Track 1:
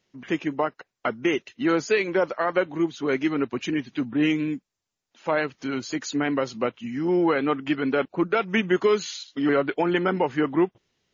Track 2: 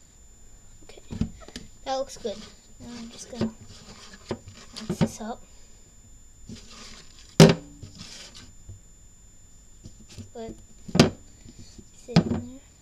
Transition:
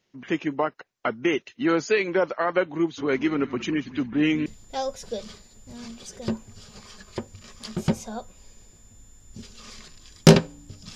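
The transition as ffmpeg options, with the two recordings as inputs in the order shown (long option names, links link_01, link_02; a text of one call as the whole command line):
ffmpeg -i cue0.wav -i cue1.wav -filter_complex "[0:a]asplit=3[link_01][link_02][link_03];[link_01]afade=type=out:start_time=2.97:duration=0.02[link_04];[link_02]asplit=6[link_05][link_06][link_07][link_08][link_09][link_10];[link_06]adelay=182,afreqshift=-55,volume=-16dB[link_11];[link_07]adelay=364,afreqshift=-110,volume=-21.7dB[link_12];[link_08]adelay=546,afreqshift=-165,volume=-27.4dB[link_13];[link_09]adelay=728,afreqshift=-220,volume=-33dB[link_14];[link_10]adelay=910,afreqshift=-275,volume=-38.7dB[link_15];[link_05][link_11][link_12][link_13][link_14][link_15]amix=inputs=6:normalize=0,afade=type=in:start_time=2.97:duration=0.02,afade=type=out:start_time=4.46:duration=0.02[link_16];[link_03]afade=type=in:start_time=4.46:duration=0.02[link_17];[link_04][link_16][link_17]amix=inputs=3:normalize=0,apad=whole_dur=10.95,atrim=end=10.95,atrim=end=4.462[link_18];[1:a]atrim=start=1.588:end=8.08[link_19];[link_18][link_19]acrossfade=duration=0.004:curve1=hsin:curve2=hsin" out.wav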